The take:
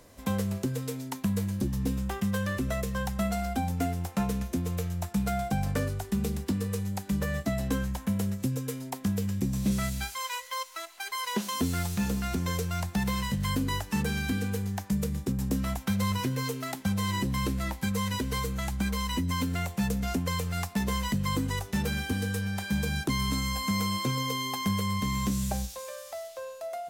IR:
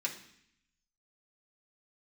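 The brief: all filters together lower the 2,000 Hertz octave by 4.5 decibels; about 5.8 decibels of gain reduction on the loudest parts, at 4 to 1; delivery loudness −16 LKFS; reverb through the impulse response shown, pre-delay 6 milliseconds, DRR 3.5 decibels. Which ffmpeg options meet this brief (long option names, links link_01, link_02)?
-filter_complex "[0:a]equalizer=frequency=2000:width_type=o:gain=-5.5,acompressor=threshold=-31dB:ratio=4,asplit=2[link_01][link_02];[1:a]atrim=start_sample=2205,adelay=6[link_03];[link_02][link_03]afir=irnorm=-1:irlink=0,volume=-6.5dB[link_04];[link_01][link_04]amix=inputs=2:normalize=0,volume=17.5dB"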